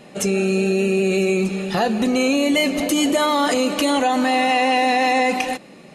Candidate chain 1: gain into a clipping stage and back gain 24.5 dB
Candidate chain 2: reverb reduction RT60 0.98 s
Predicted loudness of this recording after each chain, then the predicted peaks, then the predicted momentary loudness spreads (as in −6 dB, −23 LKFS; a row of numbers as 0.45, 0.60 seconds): −26.0, −21.0 LKFS; −24.5, −9.0 dBFS; 2, 4 LU